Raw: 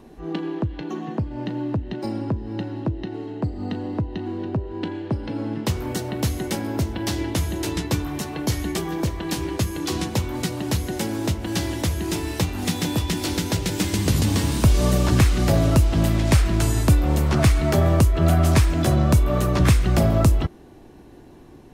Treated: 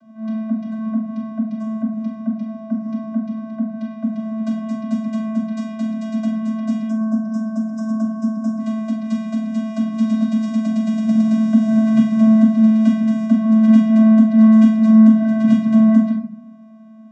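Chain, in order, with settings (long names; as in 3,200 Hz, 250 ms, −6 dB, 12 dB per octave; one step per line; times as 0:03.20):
speed change +27%
channel vocoder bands 16, square 220 Hz
gain on a spectral selection 0:06.89–0:08.60, 1,700–4,700 Hz −20 dB
convolution reverb RT60 0.60 s, pre-delay 3 ms, DRR 0 dB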